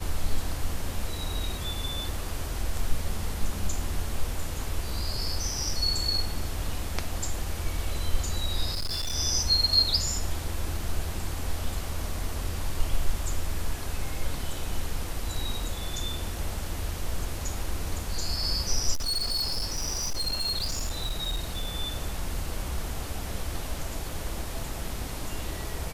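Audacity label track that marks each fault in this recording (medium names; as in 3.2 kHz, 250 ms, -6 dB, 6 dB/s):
8.740000	9.160000	clipped -26.5 dBFS
18.930000	21.720000	clipped -25 dBFS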